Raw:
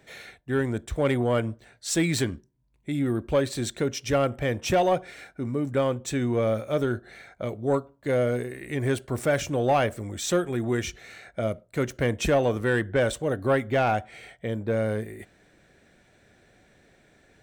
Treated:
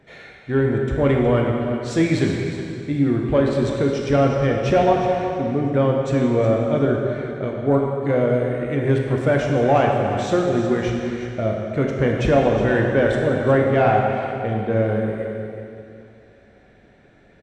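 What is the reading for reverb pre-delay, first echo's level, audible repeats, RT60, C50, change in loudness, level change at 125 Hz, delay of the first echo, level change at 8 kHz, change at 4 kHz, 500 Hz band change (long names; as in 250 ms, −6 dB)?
7 ms, −11.5 dB, 1, 2.5 s, 1.0 dB, +6.5 dB, +8.0 dB, 364 ms, can't be measured, 0.0 dB, +7.0 dB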